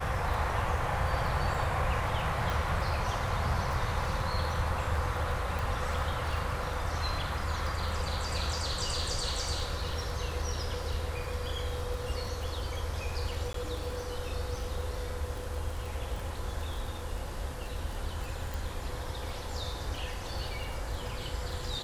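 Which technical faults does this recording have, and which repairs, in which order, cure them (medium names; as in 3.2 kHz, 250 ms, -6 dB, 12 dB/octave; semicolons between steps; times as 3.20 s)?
crackle 20 per s -36 dBFS
2.50 s: pop
5.59 s: pop
13.53–13.54 s: dropout 13 ms
18.54 s: pop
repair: de-click; interpolate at 13.53 s, 13 ms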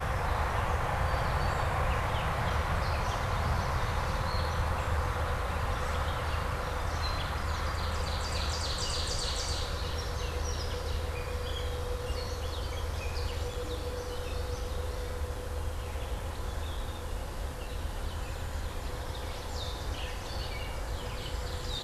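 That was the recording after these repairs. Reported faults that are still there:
nothing left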